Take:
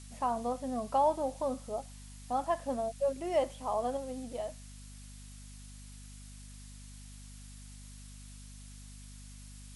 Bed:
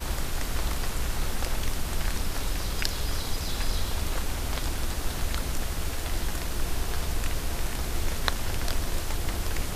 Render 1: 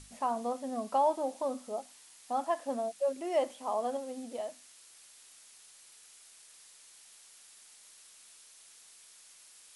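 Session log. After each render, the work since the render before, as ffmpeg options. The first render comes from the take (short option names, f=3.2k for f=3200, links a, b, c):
-af "bandreject=f=50:t=h:w=6,bandreject=f=100:t=h:w=6,bandreject=f=150:t=h:w=6,bandreject=f=200:t=h:w=6,bandreject=f=250:t=h:w=6,bandreject=f=300:t=h:w=6"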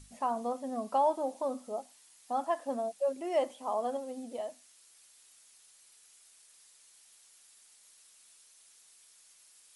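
-af "afftdn=nr=6:nf=-57"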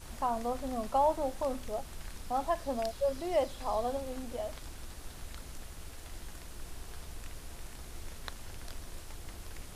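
-filter_complex "[1:a]volume=-16dB[a];[0:a][a]amix=inputs=2:normalize=0"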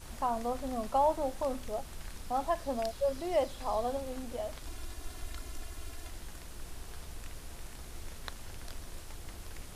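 -filter_complex "[0:a]asettb=1/sr,asplit=3[a][b][c];[a]atrim=end=4.664[d];[b]atrim=start=4.66:end=6.1,asetpts=PTS-STARTPTS,afade=t=in:d=0.004:c=qsin,afade=t=out:st=1.436:d=0.004:c=qsin,aecho=1:1:2.9:0.65,atrim=end_sample=63504[e];[c]atrim=start=6.096[f];[d][e]acrossfade=d=0.004:c1=hsin:c2=qsin[g];[g][f]acrossfade=d=0.004:c1=qsin:c2=hsin"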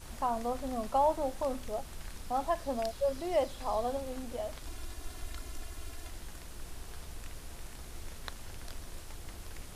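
-af anull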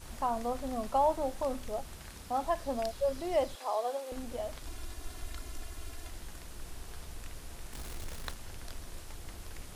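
-filter_complex "[0:a]asettb=1/sr,asplit=3[a][b][c];[a]atrim=end=1.954[d];[b]atrim=start=1.95:end=2.43,asetpts=PTS-STARTPTS,afade=t=in:d=0.004:c=qsin,afade=t=out:st=0.476:d=0.004:c=qsin,highpass=48[e];[c]atrim=start=2.426[f];[d][e]acrossfade=d=0.004:c1=hsin:c2=qsin[g];[g][f]acrossfade=d=0.004:c1=qsin:c2=hsin,asettb=1/sr,asplit=3[h][i][j];[h]atrim=end=3.554[k];[i]atrim=start=3.55:end=4.12,asetpts=PTS-STARTPTS,afade=t=in:d=0.004:c=qsin,afade=t=out:st=0.566:d=0.004:c=qsin,highpass=f=370:w=0.5412,highpass=f=370:w=1.3066[l];[j]atrim=start=4.116[m];[k][l]acrossfade=d=0.004:c1=hsin:c2=qsin[n];[n][m]acrossfade=d=0.004:c1=qsin:c2=hsin,asettb=1/sr,asplit=3[o][p][q];[o]atrim=end=7.734[r];[p]atrim=start=7.73:end=8.34,asetpts=PTS-STARTPTS,afade=t=in:d=0.004:c=qsin,afade=t=out:st=0.606:d=0.004:c=qsin,aeval=exprs='val(0)+0.5*0.0075*sgn(val(0))':c=same[s];[q]atrim=start=8.336[t];[r][s]acrossfade=d=0.004:c1=hsin:c2=qsin[u];[u][t]acrossfade=d=0.004:c1=qsin:c2=hsin"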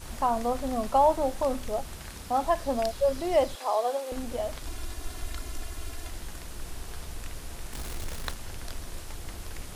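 -af "volume=6dB"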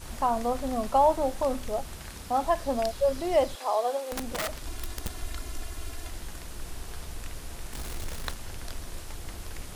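-filter_complex "[0:a]asettb=1/sr,asplit=3[a][b][c];[a]atrim=end=4.024[d];[b]atrim=start=4.02:end=5.14,asetpts=PTS-STARTPTS,afade=t=in:d=0.004:c=qsin,afade=t=out:st=1.116:d=0.004:c=qsin,aeval=exprs='(mod(18.8*val(0)+1,2)-1)/18.8':c=same[e];[c]atrim=start=5.136[f];[d][e]acrossfade=d=0.004:c1=hsin:c2=qsin[g];[g][f]acrossfade=d=0.004:c1=qsin:c2=hsin"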